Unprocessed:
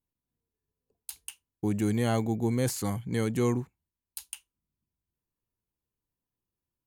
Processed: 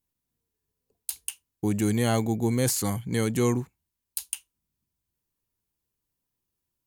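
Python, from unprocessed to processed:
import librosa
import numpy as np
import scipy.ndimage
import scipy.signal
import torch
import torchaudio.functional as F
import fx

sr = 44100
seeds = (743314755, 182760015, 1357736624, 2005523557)

y = fx.high_shelf(x, sr, hz=3600.0, db=6.5)
y = y * 10.0 ** (2.5 / 20.0)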